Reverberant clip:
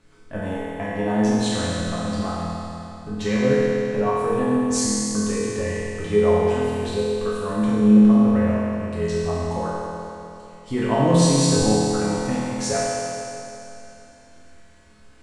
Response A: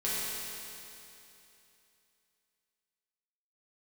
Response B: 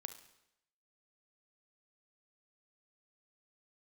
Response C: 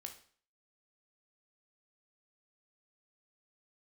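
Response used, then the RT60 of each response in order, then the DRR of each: A; 2.9 s, 0.85 s, 0.50 s; -9.5 dB, 9.0 dB, 4.0 dB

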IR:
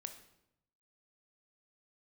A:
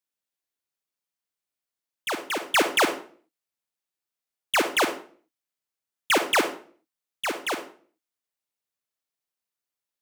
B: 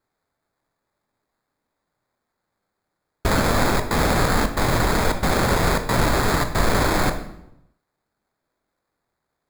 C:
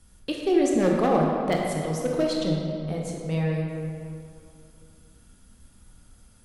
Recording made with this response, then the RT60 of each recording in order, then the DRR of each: B; 0.45 s, 0.80 s, 2.6 s; 7.0 dB, 7.0 dB, -1.5 dB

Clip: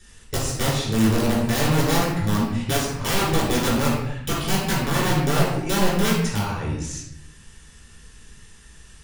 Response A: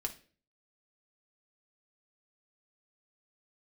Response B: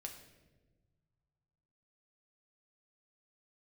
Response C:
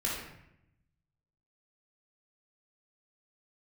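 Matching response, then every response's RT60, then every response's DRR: C; 0.40 s, 1.3 s, 0.80 s; 2.5 dB, 2.0 dB, -6.0 dB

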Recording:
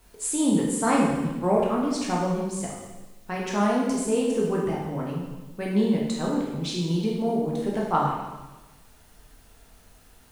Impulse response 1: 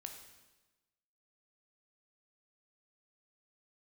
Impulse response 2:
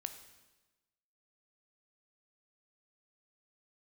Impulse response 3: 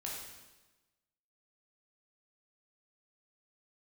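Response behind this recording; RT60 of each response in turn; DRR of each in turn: 3; 1.1 s, 1.1 s, 1.1 s; 4.0 dB, 8.0 dB, -3.5 dB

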